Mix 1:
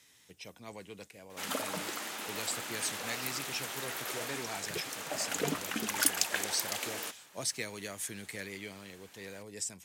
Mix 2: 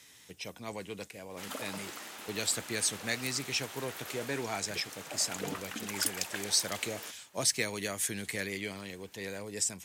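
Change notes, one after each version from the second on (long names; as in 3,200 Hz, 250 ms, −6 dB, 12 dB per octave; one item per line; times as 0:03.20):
speech +6.0 dB
first sound −5.5 dB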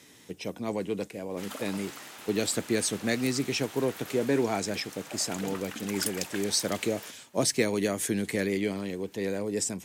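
speech: add parametric band 290 Hz +13 dB 2.7 octaves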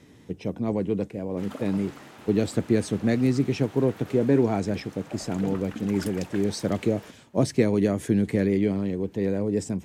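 master: add spectral tilt −3.5 dB per octave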